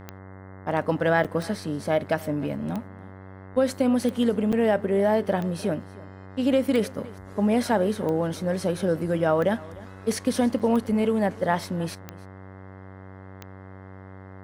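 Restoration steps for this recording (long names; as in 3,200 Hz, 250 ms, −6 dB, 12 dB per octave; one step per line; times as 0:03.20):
click removal
hum removal 95.3 Hz, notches 22
repair the gap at 0:01.24/0:04.52/0:10.59, 6.7 ms
echo removal 303 ms −21 dB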